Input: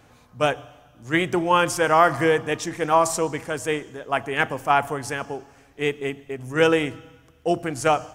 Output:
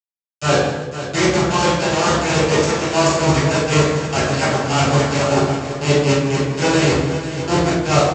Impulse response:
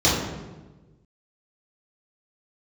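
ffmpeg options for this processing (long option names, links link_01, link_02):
-filter_complex "[0:a]bandreject=frequency=60:width_type=h:width=6,bandreject=frequency=120:width_type=h:width=6,bandreject=frequency=180:width_type=h:width=6,bandreject=frequency=240:width_type=h:width=6,bandreject=frequency=300:width_type=h:width=6,bandreject=frequency=360:width_type=h:width=6,bandreject=frequency=420:width_type=h:width=6,bandreject=frequency=480:width_type=h:width=6,areverse,acompressor=threshold=-29dB:ratio=12,areverse,aeval=exprs='sgn(val(0))*max(abs(val(0))-0.00447,0)':channel_layout=same,aresample=16000,acrusher=bits=4:mix=0:aa=0.000001,aresample=44100,asplit=2[link_01][link_02];[link_02]adelay=14,volume=-11dB[link_03];[link_01][link_03]amix=inputs=2:normalize=0,aecho=1:1:46|163|293|498|753:0.447|0.237|0.112|0.282|0.211[link_04];[1:a]atrim=start_sample=2205,asetrate=52920,aresample=44100[link_05];[link_04][link_05]afir=irnorm=-1:irlink=0,volume=-4dB"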